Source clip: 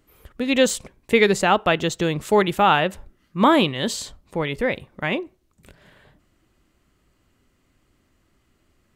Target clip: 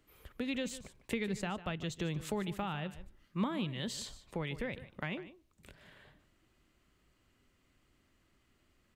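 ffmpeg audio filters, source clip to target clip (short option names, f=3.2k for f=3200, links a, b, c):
-filter_complex "[0:a]equalizer=f=2.8k:t=o:w=1.9:g=4,acrossover=split=190[a][b];[b]acompressor=threshold=-29dB:ratio=8[c];[a][c]amix=inputs=2:normalize=0,asplit=2[d][e];[e]aecho=0:1:149:0.178[f];[d][f]amix=inputs=2:normalize=0,volume=-8dB"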